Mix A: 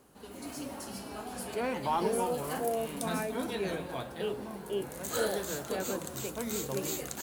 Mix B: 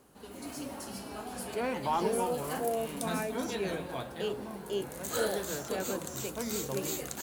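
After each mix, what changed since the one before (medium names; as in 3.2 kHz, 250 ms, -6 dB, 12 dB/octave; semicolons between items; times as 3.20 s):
speech: remove Savitzky-Golay filter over 25 samples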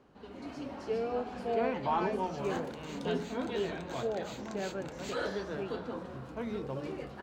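speech: entry -1.15 s; second sound: entry -2.60 s; master: add distance through air 200 m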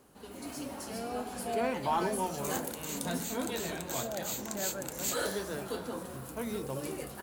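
speech: add static phaser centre 640 Hz, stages 8; master: remove distance through air 200 m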